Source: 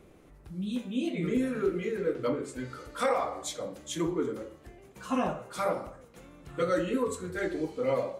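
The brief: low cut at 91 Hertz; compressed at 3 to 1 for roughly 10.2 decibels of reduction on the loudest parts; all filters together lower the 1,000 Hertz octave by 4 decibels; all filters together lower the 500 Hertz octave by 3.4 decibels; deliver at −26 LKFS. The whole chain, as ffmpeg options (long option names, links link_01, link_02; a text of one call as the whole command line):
ffmpeg -i in.wav -af "highpass=91,equalizer=frequency=500:width_type=o:gain=-3,equalizer=frequency=1000:width_type=o:gain=-4.5,acompressor=threshold=-40dB:ratio=3,volume=16dB" out.wav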